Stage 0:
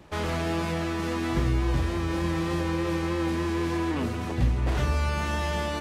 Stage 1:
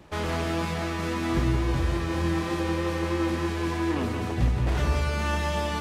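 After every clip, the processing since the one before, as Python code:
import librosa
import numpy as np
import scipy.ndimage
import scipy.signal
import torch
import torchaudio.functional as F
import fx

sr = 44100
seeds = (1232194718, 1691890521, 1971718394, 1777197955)

y = x + 10.0 ** (-6.0 / 20.0) * np.pad(x, (int(173 * sr / 1000.0), 0))[:len(x)]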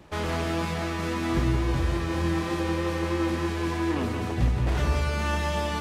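y = x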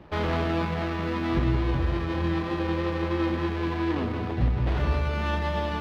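y = scipy.signal.medfilt(x, 15)
y = fx.high_shelf_res(y, sr, hz=5300.0, db=-13.0, q=1.5)
y = fx.rider(y, sr, range_db=10, speed_s=2.0)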